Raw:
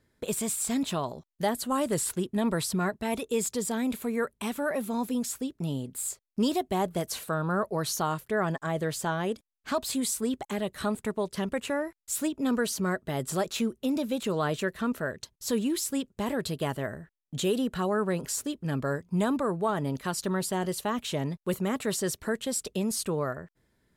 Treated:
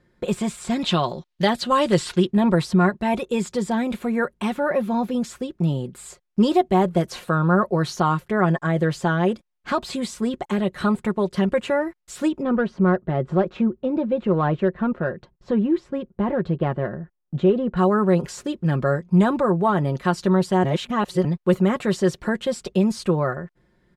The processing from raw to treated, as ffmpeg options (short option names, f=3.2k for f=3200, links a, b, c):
-filter_complex "[0:a]asettb=1/sr,asplit=3[a][b][c];[a]atrim=end=0.794[d];[b]atrim=start=0.79:end=2.31,asetpts=PTS-STARTPTS,afade=t=in:d=0.004:c=qsin,afade=t=out:st=1.516:d=0.004:c=qsin,equalizer=f=3.8k:w=0.78:g=10.5[e];[c]atrim=start=2.306[f];[d][e]acrossfade=d=0.004:c1=hsin:c2=qsin[g];[g][f]acrossfade=d=0.004:c1=qsin:c2=hsin,asettb=1/sr,asplit=3[h][i][j];[h]atrim=end=4.564[k];[i]atrim=start=4.56:end=5.14,asetpts=PTS-STARTPTS,afade=t=in:d=0.004:c=qsin,afade=t=out:st=0.576:d=0.004:c=qsin,equalizer=f=8.6k:w=1.6:g=-8[l];[j]atrim=start=5.136[m];[k][l]acrossfade=d=0.004:c1=hsin:c2=qsin[n];[n][m]acrossfade=d=0.004:c1=qsin:c2=hsin,asplit=3[o][p][q];[o]afade=t=out:st=12.41:d=0.02[r];[p]adynamicsmooth=sensitivity=0.5:basefreq=1.6k,afade=t=in:st=12.41:d=0.02,afade=t=out:st=17.76:d=0.02[s];[q]afade=t=in:st=17.76:d=0.02[t];[r][s][t]amix=inputs=3:normalize=0,asplit=3[u][v][w];[u]atrim=end=20.642[x];[v]atrim=start=20.638:end=21.252,asetpts=PTS-STARTPTS,areverse[y];[w]atrim=start=21.248[z];[x][y]acrossfade=d=0.004:c1=hsin:c2=hsin[aa];[aa][z]acrossfade=d=0.004:c1=hsin:c2=hsin,aecho=1:1:5.6:0.59,acrossover=split=7100[ab][ac];[ac]acompressor=threshold=-39dB:ratio=4:attack=1:release=60[ad];[ab][ad]amix=inputs=2:normalize=0,aemphasis=mode=reproduction:type=75fm,volume=7dB"